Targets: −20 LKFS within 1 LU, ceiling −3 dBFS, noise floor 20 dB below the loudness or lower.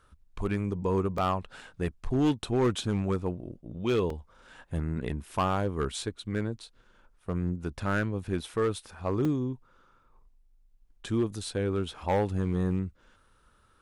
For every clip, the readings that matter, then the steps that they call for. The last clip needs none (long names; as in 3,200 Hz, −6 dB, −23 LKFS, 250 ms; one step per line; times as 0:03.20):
share of clipped samples 1.1%; peaks flattened at −20.0 dBFS; number of dropouts 3; longest dropout 3.2 ms; integrated loudness −30.5 LKFS; sample peak −20.0 dBFS; target loudness −20.0 LKFS
→ clipped peaks rebuilt −20 dBFS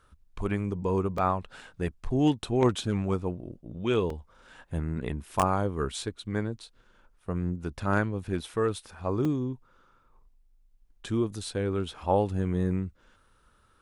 share of clipped samples 0.0%; number of dropouts 3; longest dropout 3.2 ms
→ repair the gap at 0:01.18/0:04.10/0:09.25, 3.2 ms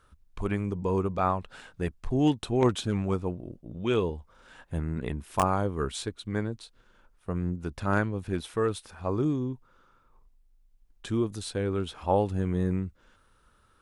number of dropouts 0; integrated loudness −30.0 LKFS; sample peak −11.0 dBFS; target loudness −20.0 LKFS
→ level +10 dB
brickwall limiter −3 dBFS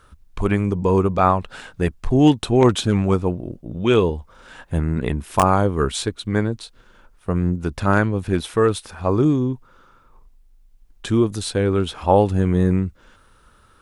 integrated loudness −20.0 LKFS; sample peak −3.0 dBFS; background noise floor −54 dBFS